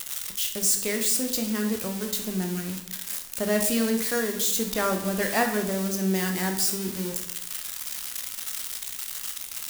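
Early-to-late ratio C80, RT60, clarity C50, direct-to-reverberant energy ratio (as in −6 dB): 10.5 dB, 0.80 s, 7.5 dB, 3.5 dB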